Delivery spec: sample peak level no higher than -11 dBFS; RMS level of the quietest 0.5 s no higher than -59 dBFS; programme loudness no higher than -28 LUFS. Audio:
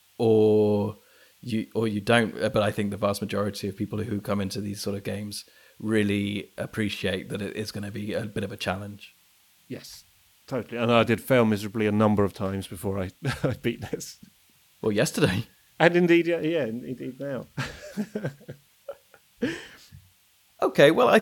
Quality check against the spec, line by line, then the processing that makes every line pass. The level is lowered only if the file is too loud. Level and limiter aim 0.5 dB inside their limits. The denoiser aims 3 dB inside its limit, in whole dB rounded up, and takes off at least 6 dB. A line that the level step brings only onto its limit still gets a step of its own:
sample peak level -4.0 dBFS: fail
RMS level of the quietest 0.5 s -62 dBFS: OK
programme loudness -26.0 LUFS: fail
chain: gain -2.5 dB; limiter -11.5 dBFS

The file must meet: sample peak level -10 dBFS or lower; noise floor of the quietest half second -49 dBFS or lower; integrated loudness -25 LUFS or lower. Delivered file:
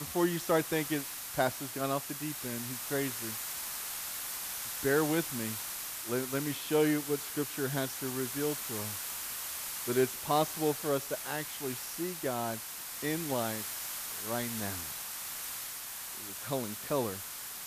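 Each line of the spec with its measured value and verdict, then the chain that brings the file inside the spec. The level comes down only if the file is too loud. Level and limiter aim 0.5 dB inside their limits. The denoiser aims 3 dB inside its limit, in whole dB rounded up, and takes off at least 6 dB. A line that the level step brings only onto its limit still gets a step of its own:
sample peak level -15.5 dBFS: OK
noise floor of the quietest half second -42 dBFS: fail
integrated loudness -33.5 LUFS: OK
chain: denoiser 10 dB, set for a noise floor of -42 dBFS

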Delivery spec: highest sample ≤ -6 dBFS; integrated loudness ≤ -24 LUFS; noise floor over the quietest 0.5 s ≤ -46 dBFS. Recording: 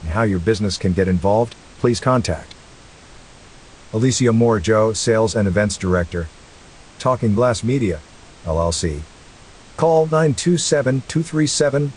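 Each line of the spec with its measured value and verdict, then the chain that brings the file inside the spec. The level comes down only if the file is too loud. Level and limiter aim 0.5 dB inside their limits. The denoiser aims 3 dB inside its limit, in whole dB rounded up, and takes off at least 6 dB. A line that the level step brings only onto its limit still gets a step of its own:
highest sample -3.0 dBFS: fail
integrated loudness -18.5 LUFS: fail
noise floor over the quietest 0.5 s -43 dBFS: fail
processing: gain -6 dB

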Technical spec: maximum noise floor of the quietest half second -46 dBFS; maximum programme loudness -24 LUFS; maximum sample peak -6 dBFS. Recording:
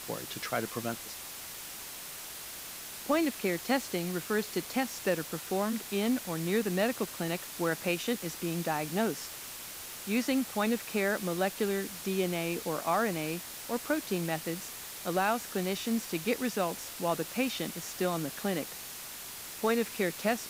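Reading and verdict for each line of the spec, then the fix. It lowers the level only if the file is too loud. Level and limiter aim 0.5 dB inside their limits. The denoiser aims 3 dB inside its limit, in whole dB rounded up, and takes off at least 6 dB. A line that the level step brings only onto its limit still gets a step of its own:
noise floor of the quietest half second -43 dBFS: fail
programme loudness -32.5 LUFS: OK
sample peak -16.5 dBFS: OK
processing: denoiser 6 dB, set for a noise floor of -43 dBFS

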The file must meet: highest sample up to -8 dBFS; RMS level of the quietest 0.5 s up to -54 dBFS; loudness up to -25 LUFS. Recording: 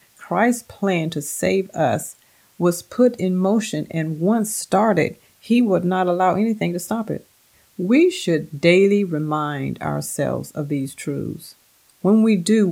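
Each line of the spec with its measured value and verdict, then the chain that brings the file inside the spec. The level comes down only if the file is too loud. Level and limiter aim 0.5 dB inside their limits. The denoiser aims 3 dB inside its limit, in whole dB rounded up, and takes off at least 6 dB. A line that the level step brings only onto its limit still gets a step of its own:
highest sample -1.5 dBFS: fail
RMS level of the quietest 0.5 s -57 dBFS: OK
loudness -20.0 LUFS: fail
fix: gain -5.5 dB; limiter -8.5 dBFS

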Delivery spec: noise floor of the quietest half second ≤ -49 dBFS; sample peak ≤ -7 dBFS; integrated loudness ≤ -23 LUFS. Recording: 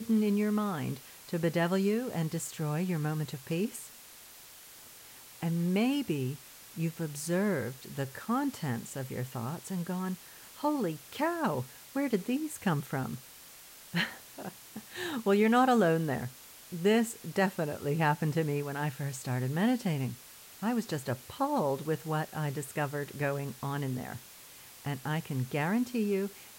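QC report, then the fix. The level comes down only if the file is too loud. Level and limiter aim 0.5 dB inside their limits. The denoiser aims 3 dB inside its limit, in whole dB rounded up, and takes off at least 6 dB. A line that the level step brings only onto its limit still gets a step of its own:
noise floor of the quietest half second -52 dBFS: OK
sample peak -15.0 dBFS: OK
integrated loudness -32.0 LUFS: OK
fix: none

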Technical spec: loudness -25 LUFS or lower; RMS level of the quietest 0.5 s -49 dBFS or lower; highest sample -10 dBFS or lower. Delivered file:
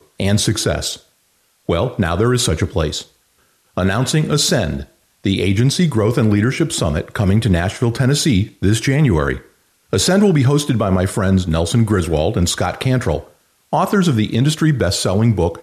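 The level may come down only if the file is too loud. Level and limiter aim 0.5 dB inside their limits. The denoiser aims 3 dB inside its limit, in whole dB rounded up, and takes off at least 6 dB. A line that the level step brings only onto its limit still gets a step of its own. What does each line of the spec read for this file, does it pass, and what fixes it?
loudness -16.5 LUFS: fail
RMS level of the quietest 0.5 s -60 dBFS: OK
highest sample -4.5 dBFS: fail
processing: gain -9 dB

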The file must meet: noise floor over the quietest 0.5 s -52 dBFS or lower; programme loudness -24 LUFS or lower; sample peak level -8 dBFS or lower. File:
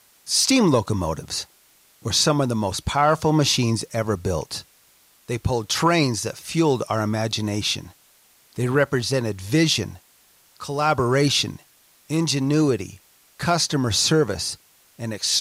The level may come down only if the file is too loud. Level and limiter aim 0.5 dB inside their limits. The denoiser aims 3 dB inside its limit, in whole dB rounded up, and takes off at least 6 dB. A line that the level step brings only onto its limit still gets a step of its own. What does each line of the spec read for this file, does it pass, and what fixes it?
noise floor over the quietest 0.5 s -57 dBFS: OK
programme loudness -21.5 LUFS: fail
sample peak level -6.5 dBFS: fail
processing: gain -3 dB

